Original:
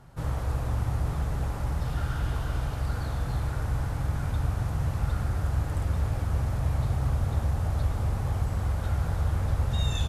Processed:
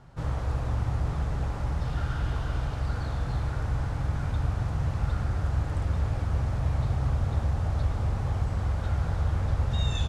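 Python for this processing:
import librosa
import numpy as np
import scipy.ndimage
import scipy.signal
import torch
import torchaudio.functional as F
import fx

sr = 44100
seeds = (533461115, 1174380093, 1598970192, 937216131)

y = scipy.signal.sosfilt(scipy.signal.butter(2, 6600.0, 'lowpass', fs=sr, output='sos'), x)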